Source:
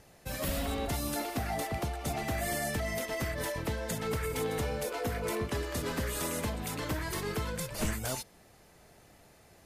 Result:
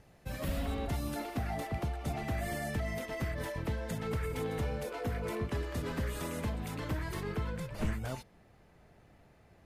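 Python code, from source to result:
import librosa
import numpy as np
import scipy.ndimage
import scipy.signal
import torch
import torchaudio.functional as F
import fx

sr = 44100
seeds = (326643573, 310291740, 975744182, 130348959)

y = fx.bass_treble(x, sr, bass_db=5, treble_db=fx.steps((0.0, -7.0), (7.22, -13.0)))
y = F.gain(torch.from_numpy(y), -4.0).numpy()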